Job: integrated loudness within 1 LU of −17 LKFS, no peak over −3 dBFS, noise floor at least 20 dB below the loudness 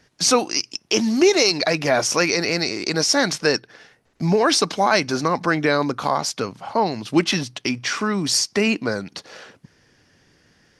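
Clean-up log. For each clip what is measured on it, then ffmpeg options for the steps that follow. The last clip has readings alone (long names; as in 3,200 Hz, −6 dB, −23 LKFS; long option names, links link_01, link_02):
integrated loudness −20.0 LKFS; sample peak −2.5 dBFS; target loudness −17.0 LKFS
→ -af "volume=3dB,alimiter=limit=-3dB:level=0:latency=1"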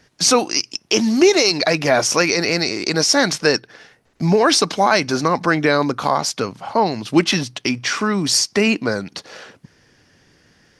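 integrated loudness −17.5 LKFS; sample peak −3.0 dBFS; background noise floor −57 dBFS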